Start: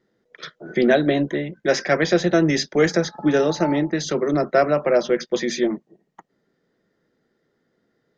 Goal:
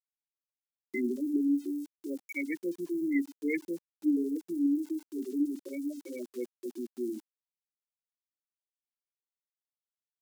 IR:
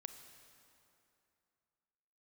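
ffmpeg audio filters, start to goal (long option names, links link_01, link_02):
-filter_complex "[0:a]asplit=3[link_01][link_02][link_03];[link_01]bandpass=frequency=270:width_type=q:width=8,volume=0dB[link_04];[link_02]bandpass=frequency=2290:width_type=q:width=8,volume=-6dB[link_05];[link_03]bandpass=frequency=3010:width_type=q:width=8,volume=-9dB[link_06];[link_04][link_05][link_06]amix=inputs=3:normalize=0,highshelf=frequency=2200:gain=2.5,asplit=2[link_07][link_08];[link_08]adelay=35,volume=-13dB[link_09];[link_07][link_09]amix=inputs=2:normalize=0,aecho=1:1:123:0.0708,afftfilt=real='re*gte(hypot(re,im),0.0891)':imag='im*gte(hypot(re,im),0.0891)':win_size=1024:overlap=0.75,afftdn=noise_reduction=33:noise_floor=-44,atempo=0.8,aeval=exprs='val(0)*gte(abs(val(0)),0.00178)':channel_layout=same,highpass=170,bass=frequency=250:gain=-12,treble=frequency=4000:gain=14,volume=2dB"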